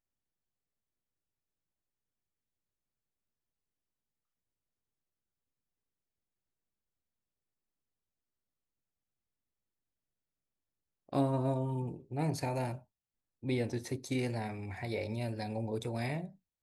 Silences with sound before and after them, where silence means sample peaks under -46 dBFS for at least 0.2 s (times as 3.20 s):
12.79–13.43 s